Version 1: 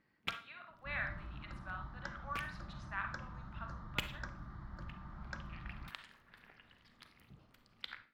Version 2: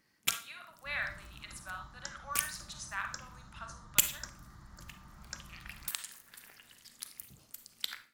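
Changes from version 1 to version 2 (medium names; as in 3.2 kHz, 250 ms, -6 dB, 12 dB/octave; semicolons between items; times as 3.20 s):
second sound -5.5 dB; master: remove distance through air 370 m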